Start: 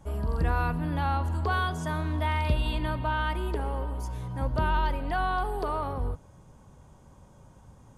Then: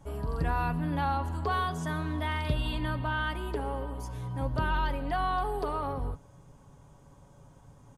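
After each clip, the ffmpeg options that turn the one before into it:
-af "aecho=1:1:7.1:0.4,volume=-2dB"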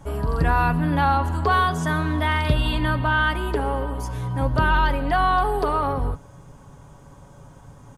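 -af "equalizer=f=1.5k:w=1.5:g=3,volume=9dB"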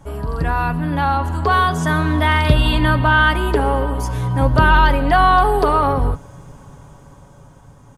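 -af "dynaudnorm=f=280:g=11:m=11.5dB"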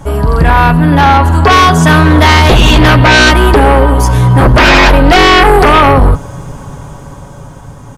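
-af "aeval=exprs='0.891*sin(PI/2*3.55*val(0)/0.891)':c=same"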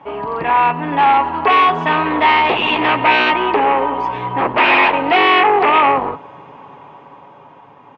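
-af "highpass=410,equalizer=f=570:t=q:w=4:g=-5,equalizer=f=920:t=q:w=4:g=4,equalizer=f=1.5k:t=q:w=4:g=-8,equalizer=f=2.6k:t=q:w=4:g=5,lowpass=f=2.8k:w=0.5412,lowpass=f=2.8k:w=1.3066,volume=-5dB"

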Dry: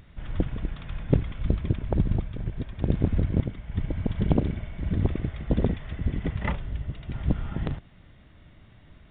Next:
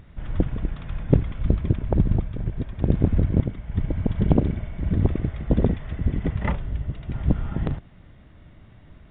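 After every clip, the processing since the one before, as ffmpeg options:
-af "highshelf=f=2.3k:g=-8.5,volume=4dB"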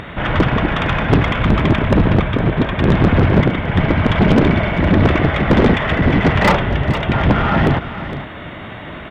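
-filter_complex "[0:a]asplit=2[a][b];[b]highpass=f=720:p=1,volume=36dB,asoftclip=type=tanh:threshold=-2.5dB[c];[a][c]amix=inputs=2:normalize=0,lowpass=f=3.1k:p=1,volume=-6dB,aecho=1:1:460:0.237"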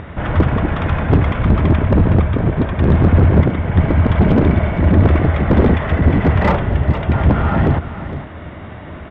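-af "lowpass=f=1.2k:p=1,equalizer=f=78:w=3.1:g=10,volume=-1dB"

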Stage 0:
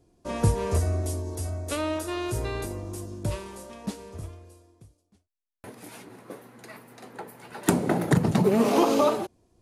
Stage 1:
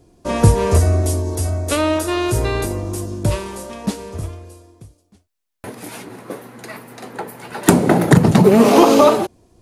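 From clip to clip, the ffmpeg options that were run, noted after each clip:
-af "acontrast=55,volume=5dB"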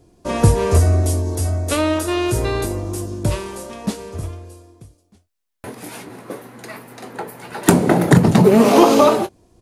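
-filter_complex "[0:a]asplit=2[a][b];[b]adelay=23,volume=-13dB[c];[a][c]amix=inputs=2:normalize=0,volume=-1dB"

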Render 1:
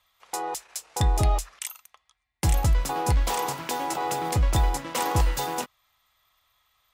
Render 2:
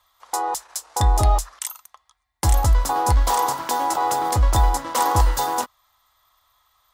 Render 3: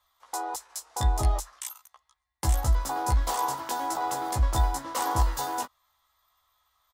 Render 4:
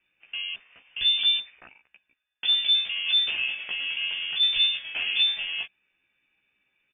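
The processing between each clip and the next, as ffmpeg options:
-af "equalizer=f=160:t=o:w=0.67:g=-12,equalizer=f=400:t=o:w=0.67:g=-4,equalizer=f=1k:t=o:w=0.67:g=5,equalizer=f=2.5k:t=o:w=0.67:g=-9,volume=5.5dB"
-filter_complex "[0:a]asplit=2[a][b];[b]adelay=15,volume=-3dB[c];[a][c]amix=inputs=2:normalize=0,volume=-9dB"
-af "lowpass=f=3.1k:t=q:w=0.5098,lowpass=f=3.1k:t=q:w=0.6013,lowpass=f=3.1k:t=q:w=0.9,lowpass=f=3.1k:t=q:w=2.563,afreqshift=-3600"

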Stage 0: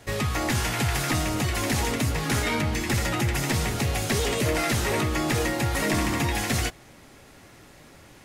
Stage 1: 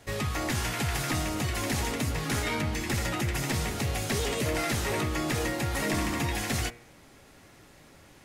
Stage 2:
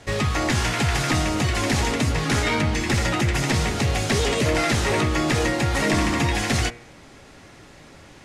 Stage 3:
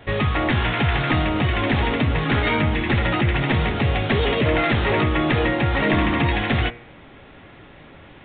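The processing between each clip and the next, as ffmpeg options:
-af "bandreject=f=118.7:t=h:w=4,bandreject=f=237.4:t=h:w=4,bandreject=f=356.1:t=h:w=4,bandreject=f=474.8:t=h:w=4,bandreject=f=593.5:t=h:w=4,bandreject=f=712.2:t=h:w=4,bandreject=f=830.9:t=h:w=4,bandreject=f=949.6:t=h:w=4,bandreject=f=1.0683k:t=h:w=4,bandreject=f=1.187k:t=h:w=4,bandreject=f=1.3057k:t=h:w=4,bandreject=f=1.4244k:t=h:w=4,bandreject=f=1.5431k:t=h:w=4,bandreject=f=1.6618k:t=h:w=4,bandreject=f=1.7805k:t=h:w=4,bandreject=f=1.8992k:t=h:w=4,bandreject=f=2.0179k:t=h:w=4,bandreject=f=2.1366k:t=h:w=4,bandreject=f=2.2553k:t=h:w=4,bandreject=f=2.374k:t=h:w=4,bandreject=f=2.4927k:t=h:w=4,bandreject=f=2.6114k:t=h:w=4,bandreject=f=2.7301k:t=h:w=4,bandreject=f=2.8488k:t=h:w=4,volume=-4dB"
-af "lowpass=7.8k,volume=8dB"
-af "aresample=8000,aresample=44100,volume=2dB"

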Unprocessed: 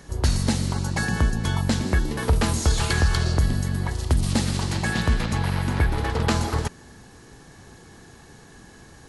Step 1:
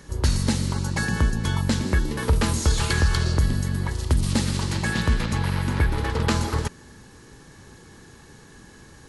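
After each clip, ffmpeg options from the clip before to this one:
-af "equalizer=f=710:w=6.8:g=-9"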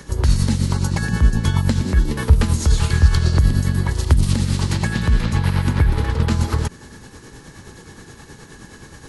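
-filter_complex "[0:a]acrossover=split=200[a][b];[b]acompressor=threshold=-32dB:ratio=6[c];[a][c]amix=inputs=2:normalize=0,tremolo=f=9.5:d=0.49,volume=9dB"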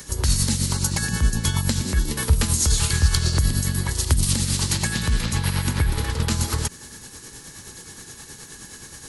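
-af "crystalizer=i=4.5:c=0,volume=-5.5dB"

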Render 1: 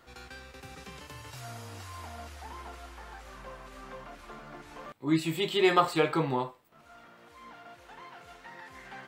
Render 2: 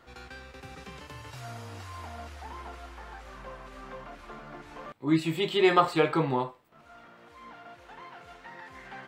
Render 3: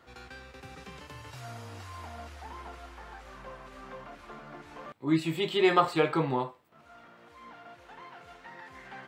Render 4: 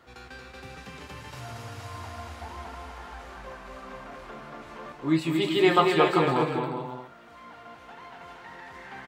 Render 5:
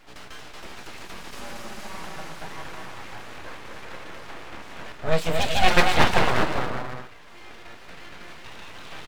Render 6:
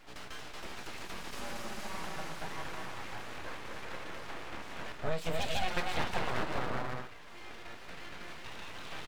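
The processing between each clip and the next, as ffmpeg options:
-af "highshelf=f=5.8k:g=-8.5,volume=2dB"
-af "highpass=48,volume=-1.5dB"
-af "aecho=1:1:230|391|503.7|582.6|637.8:0.631|0.398|0.251|0.158|0.1,volume=2dB"
-af "aeval=exprs='abs(val(0))':c=same,volume=5.5dB"
-af "acompressor=threshold=-23dB:ratio=10,volume=-3.5dB"

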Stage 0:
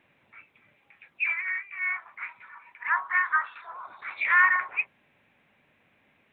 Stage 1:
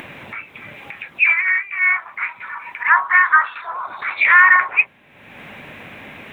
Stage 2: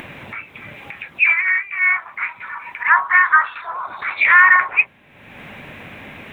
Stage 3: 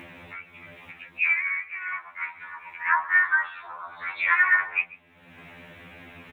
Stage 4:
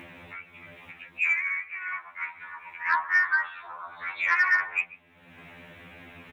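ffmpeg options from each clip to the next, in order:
-af "acompressor=mode=upward:threshold=-36dB:ratio=2.5,alimiter=level_in=14dB:limit=-1dB:release=50:level=0:latency=1,volume=-1dB"
-af "lowshelf=f=130:g=6"
-filter_complex "[0:a]asplit=2[a][b];[b]adelay=139.9,volume=-20dB,highshelf=f=4k:g=-3.15[c];[a][c]amix=inputs=2:normalize=0,afftfilt=real='re*2*eq(mod(b,4),0)':imag='im*2*eq(mod(b,4),0)':win_size=2048:overlap=0.75,volume=-7dB"
-af "asoftclip=type=tanh:threshold=-10dB,volume=-1.5dB"

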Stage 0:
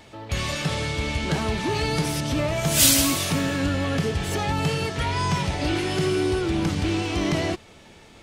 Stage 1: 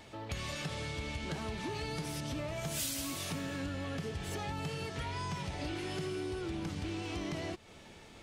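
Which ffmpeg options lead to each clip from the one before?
-af "acompressor=threshold=-32dB:ratio=4,volume=-5dB"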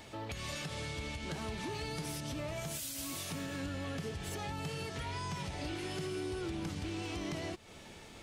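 -af "highshelf=f=6.9k:g=5,alimiter=level_in=8dB:limit=-24dB:level=0:latency=1:release=270,volume=-8dB,volume=1.5dB"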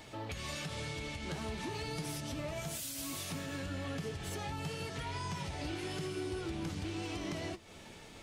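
-af "flanger=delay=6.3:depth=7.2:regen=-58:speed=0.99:shape=sinusoidal,volume=4dB"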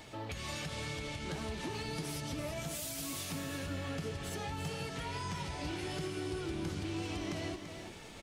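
-af "areverse,acompressor=mode=upward:threshold=-45dB:ratio=2.5,areverse,aecho=1:1:337:0.376"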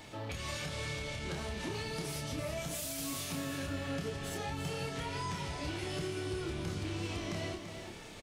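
-filter_complex "[0:a]asplit=2[a][b];[b]adelay=29,volume=-5dB[c];[a][c]amix=inputs=2:normalize=0"

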